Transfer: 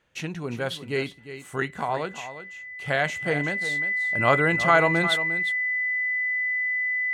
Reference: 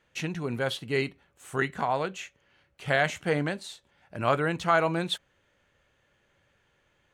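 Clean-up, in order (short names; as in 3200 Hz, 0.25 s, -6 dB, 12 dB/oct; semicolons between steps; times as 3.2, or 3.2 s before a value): notch 2000 Hz, Q 30; inverse comb 0.354 s -12 dB; gain 0 dB, from 3.65 s -4 dB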